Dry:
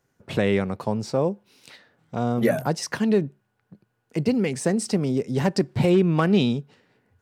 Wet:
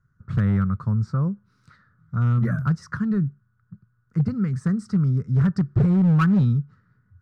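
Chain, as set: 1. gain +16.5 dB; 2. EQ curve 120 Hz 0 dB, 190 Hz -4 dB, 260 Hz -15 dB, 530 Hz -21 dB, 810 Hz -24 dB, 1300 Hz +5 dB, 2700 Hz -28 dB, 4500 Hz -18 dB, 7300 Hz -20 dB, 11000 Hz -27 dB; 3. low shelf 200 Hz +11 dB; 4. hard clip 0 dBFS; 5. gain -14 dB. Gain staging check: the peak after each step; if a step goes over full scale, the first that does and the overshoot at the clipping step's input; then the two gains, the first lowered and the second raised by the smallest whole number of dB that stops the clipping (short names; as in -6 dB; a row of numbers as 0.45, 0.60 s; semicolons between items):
+10.0, +3.0, +7.5, 0.0, -14.0 dBFS; step 1, 7.5 dB; step 1 +8.5 dB, step 5 -6 dB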